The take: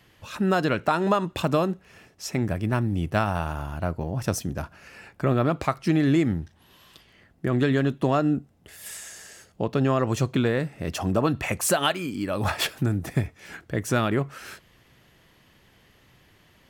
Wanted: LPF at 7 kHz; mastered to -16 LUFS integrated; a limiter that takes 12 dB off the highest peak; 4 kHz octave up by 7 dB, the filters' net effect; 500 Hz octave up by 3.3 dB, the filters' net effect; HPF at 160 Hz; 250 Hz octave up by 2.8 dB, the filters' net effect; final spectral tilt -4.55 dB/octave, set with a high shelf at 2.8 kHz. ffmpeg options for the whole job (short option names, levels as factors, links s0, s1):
-af "highpass=160,lowpass=7000,equalizer=f=250:t=o:g=3.5,equalizer=f=500:t=o:g=3,highshelf=f=2800:g=7,equalizer=f=4000:t=o:g=4,volume=3.76,alimiter=limit=0.631:level=0:latency=1"